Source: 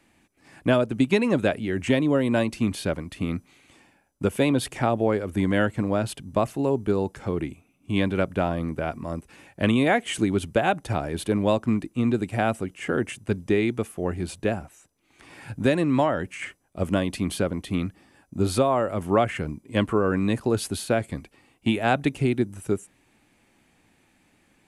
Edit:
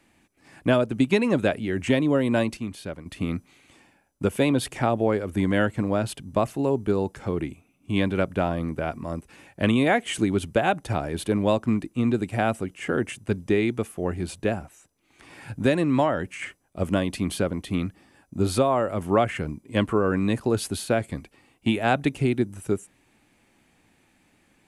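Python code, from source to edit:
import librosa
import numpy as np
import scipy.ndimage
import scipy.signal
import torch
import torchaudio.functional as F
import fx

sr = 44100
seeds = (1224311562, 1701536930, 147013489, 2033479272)

y = fx.edit(x, sr, fx.clip_gain(start_s=2.57, length_s=0.49, db=-8.0), tone=tone)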